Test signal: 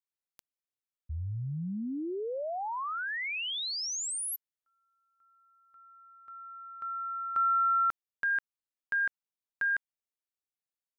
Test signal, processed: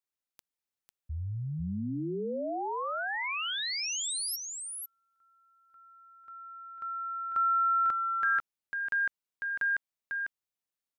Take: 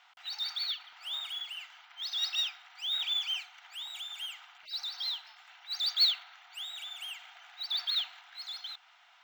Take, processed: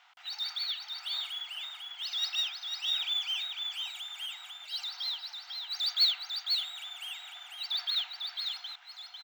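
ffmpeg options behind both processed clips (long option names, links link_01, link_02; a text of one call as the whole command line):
ffmpeg -i in.wav -af "aecho=1:1:498:0.562" out.wav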